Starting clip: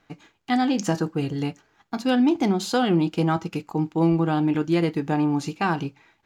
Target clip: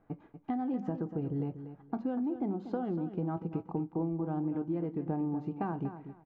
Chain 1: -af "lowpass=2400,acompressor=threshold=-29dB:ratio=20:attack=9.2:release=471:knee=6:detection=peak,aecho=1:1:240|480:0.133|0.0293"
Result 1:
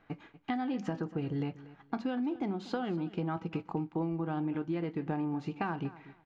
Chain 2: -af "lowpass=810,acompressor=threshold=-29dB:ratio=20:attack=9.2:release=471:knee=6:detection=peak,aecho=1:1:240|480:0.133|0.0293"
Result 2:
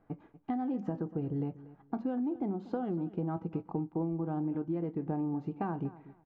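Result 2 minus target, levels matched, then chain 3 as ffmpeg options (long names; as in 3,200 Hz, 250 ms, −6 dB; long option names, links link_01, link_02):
echo-to-direct −6.5 dB
-af "lowpass=810,acompressor=threshold=-29dB:ratio=20:attack=9.2:release=471:knee=6:detection=peak,aecho=1:1:240|480|720:0.282|0.062|0.0136"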